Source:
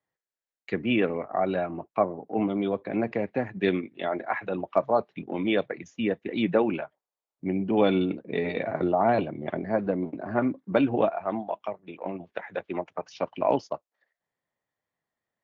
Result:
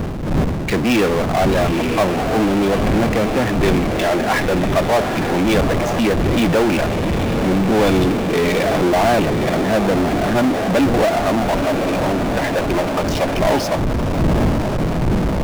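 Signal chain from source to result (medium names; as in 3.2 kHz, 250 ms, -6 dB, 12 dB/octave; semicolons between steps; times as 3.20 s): wind noise 210 Hz -34 dBFS; echo that smears into a reverb 921 ms, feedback 62%, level -13 dB; power-law waveshaper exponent 0.35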